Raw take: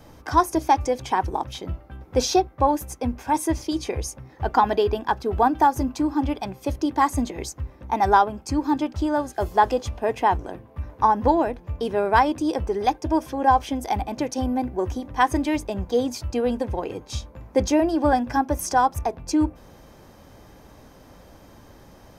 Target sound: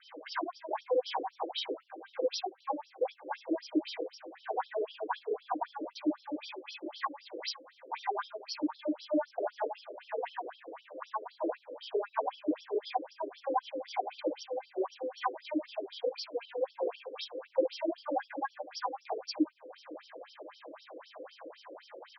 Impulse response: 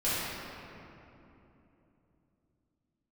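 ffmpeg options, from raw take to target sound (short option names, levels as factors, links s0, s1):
-filter_complex "[0:a]asettb=1/sr,asplit=3[s0][s1][s2];[s0]atrim=end=6.544[s3];[s1]atrim=start=6.54:end=8.21,asetpts=PTS-STARTPTS,afade=t=in:d=0.004:c=qsin,afade=t=out:st=1.666:d=0.004:c=qsin,equalizer=f=380:t=o:w=2.6:g=-11.5[s4];[s2]atrim=start=8.206[s5];[s3][s4]acrossfade=d=0.004:c1=hsin:c2=qsin[s6];[s6][s5]acrossfade=d=0.004:c1=qsin:c2=hsin,acompressor=threshold=0.0251:ratio=12,asplit=2[s7][s8];[s8]adelay=443,lowpass=f=1300:p=1,volume=0.188,asplit=2[s9][s10];[s10]adelay=443,lowpass=f=1300:p=1,volume=0.31,asplit=2[s11][s12];[s12]adelay=443,lowpass=f=1300:p=1,volume=0.31[s13];[s7][s9][s11][s13]amix=inputs=4:normalize=0[s14];[1:a]atrim=start_sample=2205,atrim=end_sample=4410[s15];[s14][s15]afir=irnorm=-1:irlink=0,afftfilt=real='re*between(b*sr/1024,400*pow(4200/400,0.5+0.5*sin(2*PI*3.9*pts/sr))/1.41,400*pow(4200/400,0.5+0.5*sin(2*PI*3.9*pts/sr))*1.41)':imag='im*between(b*sr/1024,400*pow(4200/400,0.5+0.5*sin(2*PI*3.9*pts/sr))/1.41,400*pow(4200/400,0.5+0.5*sin(2*PI*3.9*pts/sr))*1.41)':win_size=1024:overlap=0.75,volume=1.12"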